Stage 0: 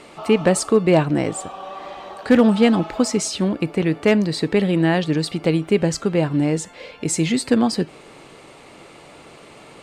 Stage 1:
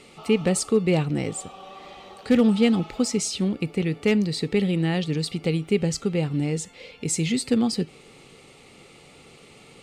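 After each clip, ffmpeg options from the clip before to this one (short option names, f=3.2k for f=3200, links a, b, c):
-af "equalizer=f=315:t=o:w=0.33:g=-7,equalizer=f=630:t=o:w=0.33:g=-12,equalizer=f=1k:t=o:w=0.33:g=-12,equalizer=f=1.6k:t=o:w=0.33:g=-11,volume=-2.5dB"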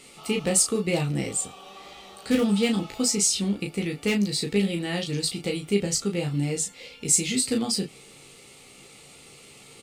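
-filter_complex "[0:a]crystalizer=i=2.5:c=0,asplit=2[a][b];[b]aecho=0:1:15|35:0.562|0.562[c];[a][c]amix=inputs=2:normalize=0,volume=-5dB"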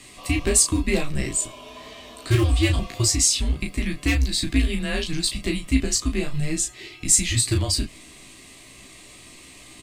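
-af "afreqshift=-140,volume=3.5dB"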